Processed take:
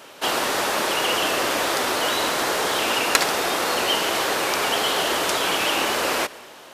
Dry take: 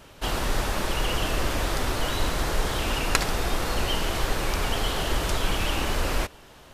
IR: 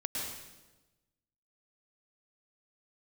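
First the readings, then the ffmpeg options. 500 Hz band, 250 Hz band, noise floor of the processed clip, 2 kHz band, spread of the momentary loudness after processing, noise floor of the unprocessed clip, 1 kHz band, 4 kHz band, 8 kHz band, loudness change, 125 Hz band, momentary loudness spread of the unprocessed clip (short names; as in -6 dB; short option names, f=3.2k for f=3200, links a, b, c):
+6.5 dB, +2.0 dB, -44 dBFS, +7.5 dB, 2 LU, -49 dBFS, +7.5 dB, +7.5 dB, +7.5 dB, +6.0 dB, -12.5 dB, 3 LU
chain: -filter_complex "[0:a]highpass=350,asoftclip=type=hard:threshold=-11.5dB,asplit=2[a][b];[1:a]atrim=start_sample=2205[c];[b][c]afir=irnorm=-1:irlink=0,volume=-22dB[d];[a][d]amix=inputs=2:normalize=0,volume=7dB"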